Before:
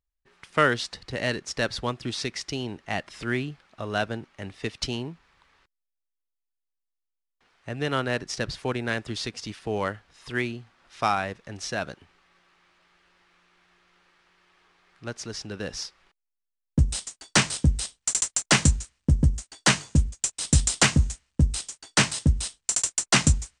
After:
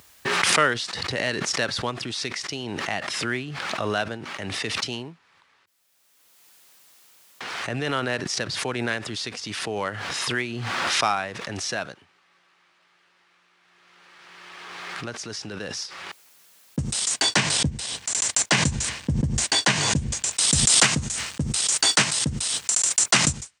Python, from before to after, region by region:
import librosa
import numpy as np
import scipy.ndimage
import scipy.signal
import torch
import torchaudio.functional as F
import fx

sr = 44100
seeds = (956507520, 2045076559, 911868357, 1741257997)

y = fx.chain(x, sr, fx.lowpass(hz=3900.0, slope=6),
    fx.low_shelf(hz=140.0, db=4.0),
    fx.notch(hz=1300.0, q=8.1), at=(17.14, 20.32))
y = scipy.signal.sosfilt(scipy.signal.butter(4, 92.0, 'highpass', fs=sr, output='sos'), y)
y = fx.low_shelf(y, sr, hz=450.0, db=-6.5)
y = fx.pre_swell(y, sr, db_per_s=21.0)
y = y * 10.0 ** (1.5 / 20.0)